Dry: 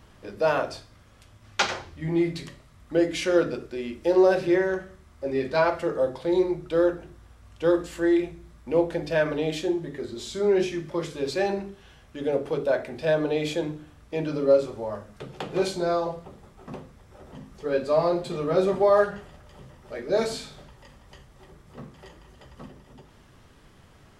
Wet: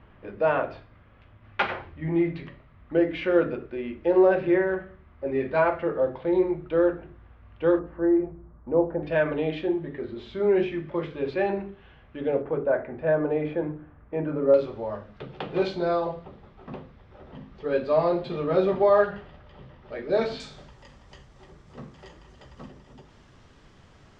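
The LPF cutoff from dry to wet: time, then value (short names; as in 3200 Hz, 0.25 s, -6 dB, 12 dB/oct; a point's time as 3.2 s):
LPF 24 dB/oct
2700 Hz
from 7.79 s 1300 Hz
from 9.03 s 2900 Hz
from 12.42 s 1900 Hz
from 14.54 s 3900 Hz
from 20.4 s 7300 Hz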